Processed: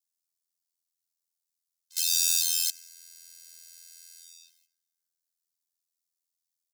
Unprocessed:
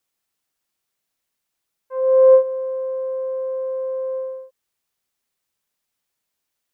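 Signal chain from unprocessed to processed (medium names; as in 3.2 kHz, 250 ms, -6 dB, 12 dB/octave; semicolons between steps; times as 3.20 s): delay 283 ms -17.5 dB; in parallel at -5 dB: integer overflow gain 20 dB; on the sum: waveshaping leveller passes 3; on a send at -17 dB: reverberation RT60 2.4 s, pre-delay 68 ms; on the sum: ring modulator 42 Hz; inverse Chebyshev high-pass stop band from 760 Hz, stop band 80 dB; upward expansion 1.5:1, over -46 dBFS; trim +6.5 dB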